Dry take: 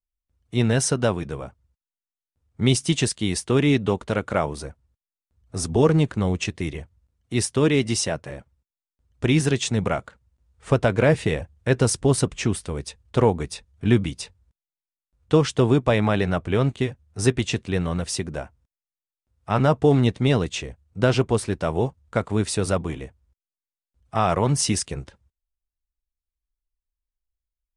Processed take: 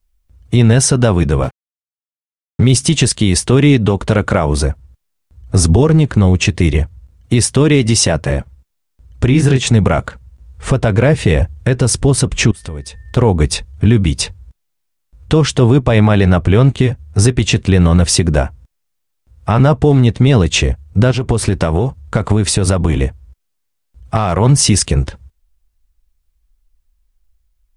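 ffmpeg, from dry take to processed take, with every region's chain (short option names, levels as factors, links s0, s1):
-filter_complex "[0:a]asettb=1/sr,asplit=3[s0][s1][s2];[s0]atrim=end=1.434[s3];[s1]atrim=start=1.43:end=2.73,asetpts=PTS-STARTPTS,afade=t=in:d=0.004:c=qsin,afade=t=out:st=1.296:d=0.004:c=qsin,acompressor=threshold=0.0355:ratio=1.5:attack=3.2:release=140:knee=1:detection=peak,aecho=1:1:7.4:0.49,atrim=end_sample=57330,aeval=exprs='sgn(val(0))*max(abs(val(0))-0.00473,0)':c=same[s4];[s2]atrim=start=2.726[s5];[s3][s4]acrossfade=d=0.004:c1=hsin:c2=qsin[s6];[s6][s5]acrossfade=d=0.004:c1=qsin:c2=hsin,asettb=1/sr,asplit=3[s7][s8][s9];[s7]atrim=end=9.274[s10];[s8]atrim=start=9.27:end=9.67,asetpts=PTS-STARTPTS,afade=t=in:d=0.004:c=qsin,afade=t=out:st=0.396:d=0.004:c=qsin,acrossover=split=2700[s11][s12];[s12]acompressor=threshold=0.0224:ratio=4:attack=1:release=60[s13];[s11][s13]amix=inputs=2:normalize=0,asplit=2[s14][s15];[s15]adelay=23,volume=0.501[s16];[s14][s16]amix=inputs=2:normalize=0,atrim=end_sample=17640[s17];[s9]atrim=start=9.666[s18];[s10][s17]acrossfade=d=0.004:c1=hsin:c2=qsin[s19];[s19][s18]acrossfade=d=0.004:c1=qsin:c2=hsin,asettb=1/sr,asplit=3[s20][s21][s22];[s20]atrim=end=12.514[s23];[s21]atrim=start=12.51:end=13.17,asetpts=PTS-STARTPTS,afade=t=in:d=0.004:c=qsin,afade=t=out:st=0.656:d=0.004:c=qsin,acompressor=threshold=0.00708:ratio=10:attack=3.2:release=140:knee=1:detection=peak,aeval=exprs='val(0)+0.000447*sin(2*PI*1800*n/s)':c=same[s24];[s22]atrim=start=13.166[s25];[s23][s24]acrossfade=d=0.004:c1=hsin:c2=qsin[s26];[s26][s25]acrossfade=d=0.004:c1=qsin:c2=hsin,asettb=1/sr,asplit=3[s27][s28][s29];[s27]atrim=end=21.114[s30];[s28]atrim=start=21.11:end=24.39,asetpts=PTS-STARTPTS,afade=t=in:d=0.004:c=qsin,afade=t=out:st=3.276:d=0.004:c=qsin,asoftclip=type=hard:threshold=0.335,acompressor=threshold=0.0447:ratio=12:attack=3.2:release=140:knee=1:detection=peak[s31];[s29]atrim=start=24.386[s32];[s30][s31]acrossfade=d=0.004:c1=hsin:c2=qsin[s33];[s33][s32]acrossfade=d=0.004:c1=qsin:c2=hsin,lowshelf=f=120:g=10.5,acompressor=threshold=0.0891:ratio=6,alimiter=level_in=7.5:limit=0.891:release=50:level=0:latency=1,volume=0.891"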